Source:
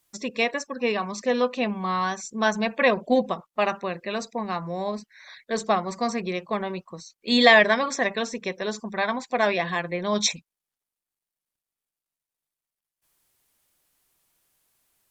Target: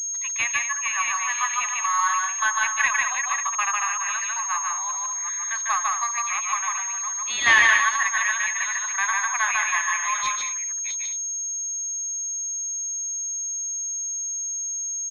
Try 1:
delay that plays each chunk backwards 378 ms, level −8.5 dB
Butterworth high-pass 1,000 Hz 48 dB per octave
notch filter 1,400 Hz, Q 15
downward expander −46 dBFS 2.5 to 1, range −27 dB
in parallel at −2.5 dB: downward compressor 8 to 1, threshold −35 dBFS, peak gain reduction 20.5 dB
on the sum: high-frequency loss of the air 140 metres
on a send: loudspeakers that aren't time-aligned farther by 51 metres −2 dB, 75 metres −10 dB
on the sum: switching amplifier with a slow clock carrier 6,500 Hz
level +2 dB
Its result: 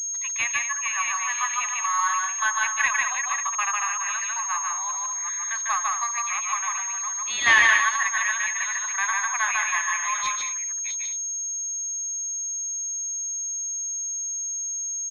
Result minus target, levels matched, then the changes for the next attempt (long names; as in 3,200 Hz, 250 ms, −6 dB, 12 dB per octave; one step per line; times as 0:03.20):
downward compressor: peak gain reduction +6 dB
change: downward compressor 8 to 1, threshold −28 dBFS, peak gain reduction 14.5 dB